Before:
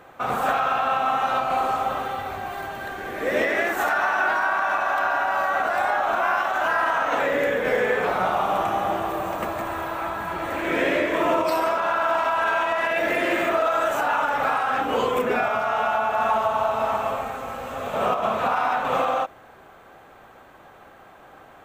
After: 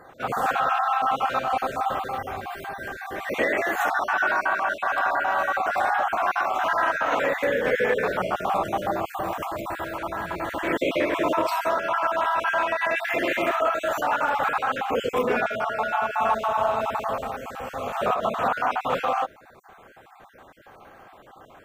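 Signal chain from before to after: random holes in the spectrogram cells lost 30%

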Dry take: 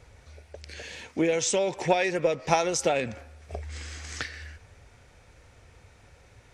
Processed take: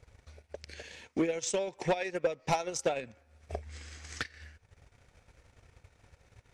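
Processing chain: transient shaper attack +9 dB, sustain -11 dB; saturation -13 dBFS, distortion -9 dB; trim -7.5 dB

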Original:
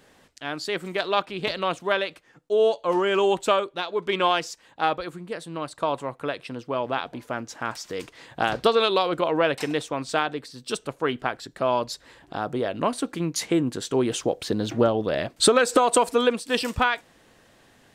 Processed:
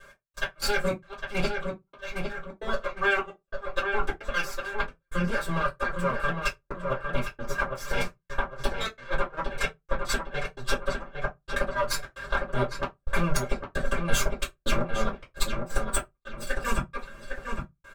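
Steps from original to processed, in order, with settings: comb filter that takes the minimum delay 1.8 ms; peaking EQ 1.4 kHz +13.5 dB 0.68 oct; compression 12:1, threshold -27 dBFS, peak gain reduction 18 dB; inverted gate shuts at -19 dBFS, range -36 dB; level held to a coarse grid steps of 13 dB; comb 5.1 ms, depth 98%; filtered feedback delay 807 ms, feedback 37%, low-pass 2.7 kHz, level -5 dB; trance gate "x..xxxxx.xxxxx" 132 bpm -60 dB; 8.96–11.54 s: treble shelf 11 kHz -10.5 dB; reverberation, pre-delay 3 ms, DRR -3 dB; trim +3.5 dB

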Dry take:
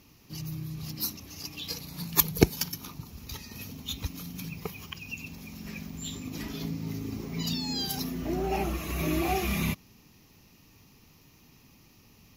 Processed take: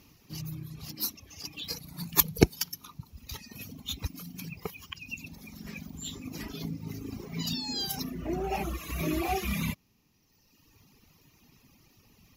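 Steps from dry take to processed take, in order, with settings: reverb removal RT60 1.6 s

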